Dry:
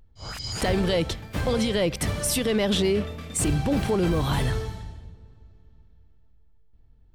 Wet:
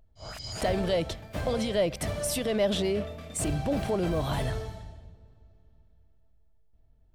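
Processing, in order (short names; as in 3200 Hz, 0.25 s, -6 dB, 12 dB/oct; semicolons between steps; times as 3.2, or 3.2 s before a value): bell 640 Hz +12 dB 0.32 oct; gain -6 dB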